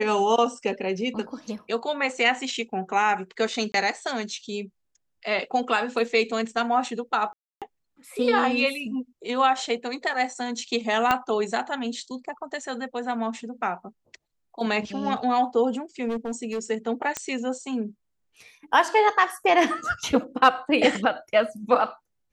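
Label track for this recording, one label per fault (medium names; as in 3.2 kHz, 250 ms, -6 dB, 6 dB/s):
3.720000	3.740000	dropout 22 ms
7.330000	7.620000	dropout 287 ms
11.110000	11.110000	pop -8 dBFS
16.080000	16.590000	clipped -24.5 dBFS
17.170000	17.170000	pop -12 dBFS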